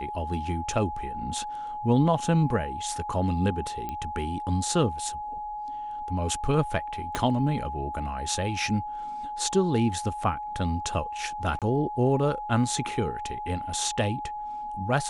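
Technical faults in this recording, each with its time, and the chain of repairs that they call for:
whine 840 Hz -32 dBFS
3.89 s: pop -20 dBFS
7.15 s: pop -12 dBFS
11.59–11.62 s: dropout 27 ms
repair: de-click; band-stop 840 Hz, Q 30; interpolate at 11.59 s, 27 ms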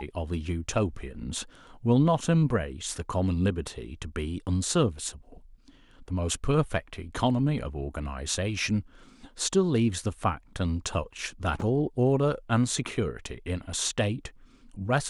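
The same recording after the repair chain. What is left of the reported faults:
7.15 s: pop

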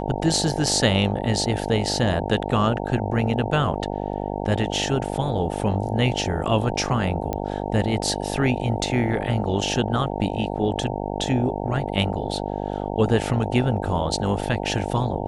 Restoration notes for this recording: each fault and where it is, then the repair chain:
buzz 50 Hz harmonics 18 -28 dBFS
7.33 s: pop -13 dBFS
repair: de-click; de-hum 50 Hz, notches 18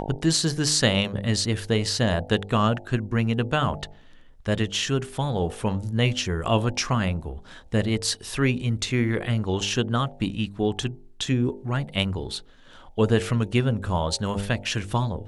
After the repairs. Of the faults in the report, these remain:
nothing left

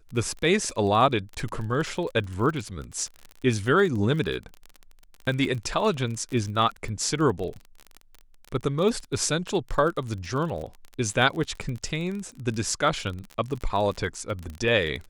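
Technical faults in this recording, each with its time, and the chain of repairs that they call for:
crackle 32 per s -31 dBFS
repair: de-click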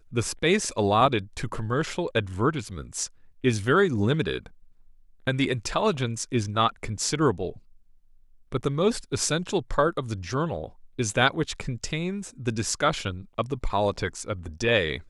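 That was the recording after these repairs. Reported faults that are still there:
nothing left

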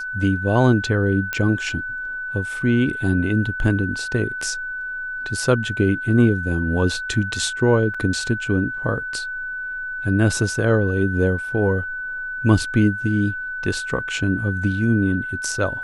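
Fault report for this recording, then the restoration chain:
whine 1.5 kHz -26 dBFS
1.33 s: pop -9 dBFS
7.94–7.95 s: dropout 5.1 ms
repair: de-click; band-stop 1.5 kHz, Q 30; interpolate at 7.94 s, 5.1 ms

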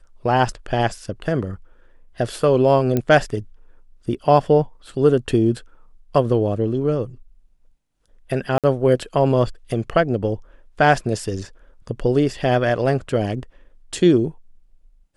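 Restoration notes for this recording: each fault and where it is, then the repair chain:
2.97 s: pop -8 dBFS
8.58–8.64 s: dropout 57 ms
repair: de-click; interpolate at 8.58 s, 57 ms

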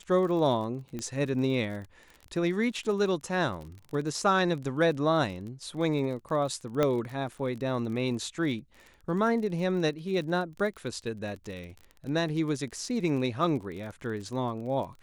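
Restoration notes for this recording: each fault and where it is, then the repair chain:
crackle 34 per s -37 dBFS
0.99 s: pop -22 dBFS
6.83 s: pop -13 dBFS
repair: de-click

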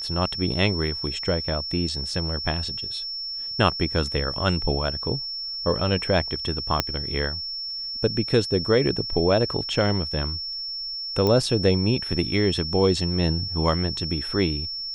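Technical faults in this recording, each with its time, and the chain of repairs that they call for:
whine 5.4 kHz -29 dBFS
6.80 s: pop -4 dBFS
11.27 s: pop -11 dBFS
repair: de-click; band-stop 5.4 kHz, Q 30

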